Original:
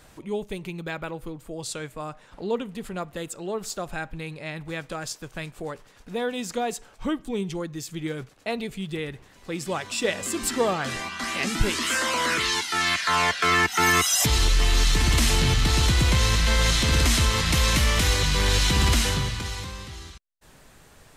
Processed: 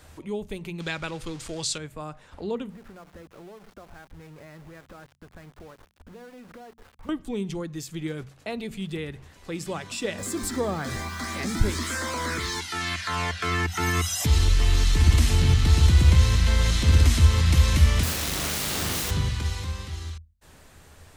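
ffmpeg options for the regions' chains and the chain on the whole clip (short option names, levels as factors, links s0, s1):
-filter_complex "[0:a]asettb=1/sr,asplit=3[s0][s1][s2];[s0]atrim=end=0.804[s3];[s1]atrim=start=0.8:end=1.78,asetpts=PTS-STARTPTS,afade=t=in:d=0.004:c=qsin,afade=t=out:st=0.976:d=0.004:c=qsin,aeval=exprs='val(0)+0.5*0.00562*sgn(val(0))':c=same,lowpass=8600,equalizer=f=5200:w=0.31:g=14[s4];[s2]atrim=start=1.776[s5];[s3][s4]acrossfade=d=0.004:c1=hsin:c2=qsin[s6];[s6][s5]acrossfade=d=0.004:c1=qsin:c2=hsin,asettb=1/sr,asplit=3[s7][s8][s9];[s7]atrim=end=2.704[s10];[s8]atrim=start=2.7:end=7.09,asetpts=PTS-STARTPTS,afade=t=in:d=0.004:c=qsin,afade=t=out:st=4.386:d=0.004:c=qsin,lowpass=f=1900:w=0.5412,lowpass=f=1900:w=1.3066,acompressor=threshold=0.00794:ratio=8:attack=3.2:release=140:knee=1:detection=peak,aeval=exprs='val(0)*gte(abs(val(0)),0.00355)':c=same[s11];[s9]atrim=start=7.086[s12];[s10][s11]acrossfade=d=0.004:c1=hsin:c2=qsin[s13];[s13][s12]acrossfade=d=0.004:c1=qsin:c2=hsin,asettb=1/sr,asplit=3[s14][s15][s16];[s14]atrim=end=10.184[s17];[s15]atrim=start=10.18:end=12.6,asetpts=PTS-STARTPTS,afade=t=in:d=0.004:c=qsin,afade=t=out:st=2.416:d=0.004:c=qsin,aeval=exprs='val(0)+0.5*0.0188*sgn(val(0))':c=same,equalizer=f=2800:t=o:w=0.3:g=-12.5[s18];[s16]atrim=start=12.596[s19];[s17][s18]acrossfade=d=0.004:c1=hsin:c2=qsin[s20];[s20][s19]acrossfade=d=0.004:c1=qsin:c2=hsin,asettb=1/sr,asplit=3[s21][s22][s23];[s21]atrim=end=18.034[s24];[s22]atrim=start=18.03:end=19.11,asetpts=PTS-STARTPTS,afade=t=in:d=0.004:c=qsin,afade=t=out:st=1.076:d=0.004:c=qsin,aeval=exprs='(mod(8.41*val(0)+1,2)-1)/8.41':c=same,highpass=f=120:p=1,asplit=2[s25][s26];[s26]adelay=39,volume=0.631[s27];[s25][s27]amix=inputs=2:normalize=0,atrim=end_sample=47628[s28];[s23]atrim=start=19.106[s29];[s24][s28]acrossfade=d=0.004:c1=hsin:c2=qsin[s30];[s30][s29]acrossfade=d=0.004:c1=qsin:c2=hsin,equalizer=f=80:w=4.7:g=14,bandreject=f=45.51:t=h:w=4,bandreject=f=91.02:t=h:w=4,bandreject=f=136.53:t=h:w=4,bandreject=f=182.04:t=h:w=4,bandreject=f=227.55:t=h:w=4,acrossover=split=330[s31][s32];[s32]acompressor=threshold=0.0112:ratio=1.5[s33];[s31][s33]amix=inputs=2:normalize=0"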